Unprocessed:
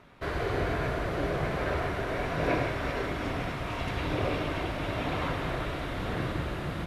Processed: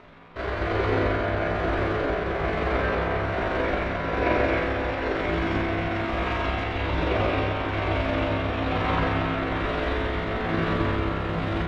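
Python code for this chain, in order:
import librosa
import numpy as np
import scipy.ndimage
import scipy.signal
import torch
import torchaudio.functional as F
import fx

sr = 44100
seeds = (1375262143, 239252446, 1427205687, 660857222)

p1 = scipy.signal.sosfilt(scipy.signal.butter(2, 4400.0, 'lowpass', fs=sr, output='sos'), x)
p2 = fx.peak_eq(p1, sr, hz=130.0, db=-13.5, octaves=0.3)
p3 = fx.rider(p2, sr, range_db=10, speed_s=0.5)
p4 = p2 + (p3 * librosa.db_to_amplitude(-2.0))
p5 = p4 * (1.0 - 0.37 / 2.0 + 0.37 / 2.0 * np.cos(2.0 * np.pi * 1.9 * (np.arange(len(p4)) / sr)))
p6 = fx.stretch_grains(p5, sr, factor=1.7, grain_ms=89.0)
p7 = fx.rev_spring(p6, sr, rt60_s=3.1, pass_ms=(30,), chirp_ms=35, drr_db=1.0)
y = p7 * librosa.db_to_amplitude(1.5)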